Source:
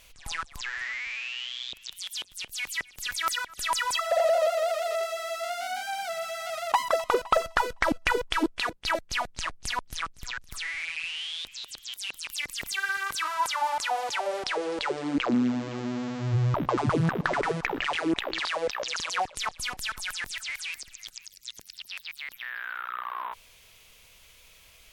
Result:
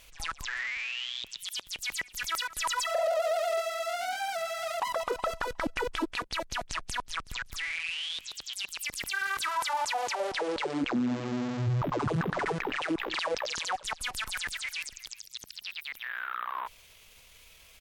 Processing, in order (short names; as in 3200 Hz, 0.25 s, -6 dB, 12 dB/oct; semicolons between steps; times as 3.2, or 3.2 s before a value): tempo 1.4×; limiter -22.5 dBFS, peak gain reduction 10 dB